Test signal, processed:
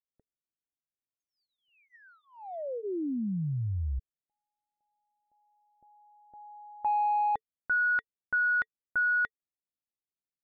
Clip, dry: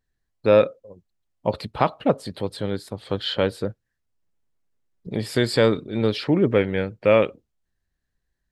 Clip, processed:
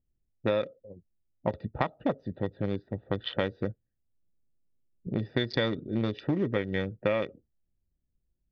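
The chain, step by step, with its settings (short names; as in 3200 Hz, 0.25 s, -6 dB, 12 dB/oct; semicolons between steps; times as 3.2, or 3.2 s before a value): Wiener smoothing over 41 samples; low-pass opened by the level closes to 640 Hz, open at -19.5 dBFS; notch 440 Hz, Q 12; compressor 10:1, threshold -24 dBFS; brick-wall FIR low-pass 6600 Hz; small resonant body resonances 1900/3500 Hz, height 14 dB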